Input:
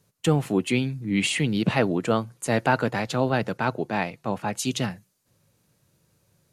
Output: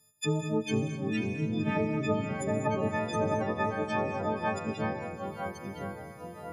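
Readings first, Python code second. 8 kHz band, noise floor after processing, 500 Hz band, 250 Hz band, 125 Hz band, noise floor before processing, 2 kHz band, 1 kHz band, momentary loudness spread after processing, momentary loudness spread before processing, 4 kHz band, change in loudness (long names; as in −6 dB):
−11.0 dB, −47 dBFS, −4.0 dB, −5.5 dB, −6.0 dB, −70 dBFS, −7.5 dB, −4.5 dB, 10 LU, 6 LU, −11.5 dB, −6.5 dB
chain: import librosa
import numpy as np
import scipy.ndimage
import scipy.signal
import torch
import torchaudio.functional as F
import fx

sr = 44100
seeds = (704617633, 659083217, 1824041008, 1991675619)

p1 = fx.freq_snap(x, sr, grid_st=6)
p2 = fx.env_lowpass_down(p1, sr, base_hz=520.0, full_db=-14.5)
p3 = p2 + fx.echo_diffused(p2, sr, ms=512, feedback_pct=40, wet_db=-14.0, dry=0)
p4 = fx.rev_gated(p3, sr, seeds[0], gate_ms=240, shape='rising', drr_db=9.0)
p5 = fx.echo_pitch(p4, sr, ms=425, semitones=-2, count=3, db_per_echo=-6.0)
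y = p5 * 10.0 ** (-8.0 / 20.0)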